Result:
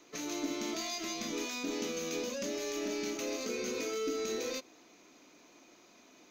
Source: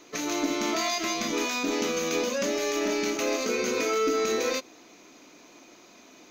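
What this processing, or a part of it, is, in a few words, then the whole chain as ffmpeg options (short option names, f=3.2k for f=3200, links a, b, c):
one-band saturation: -filter_complex "[0:a]acrossover=split=550|2500[a][b][c];[b]asoftclip=type=tanh:threshold=-39dB[d];[a][d][c]amix=inputs=3:normalize=0,volume=-7.5dB"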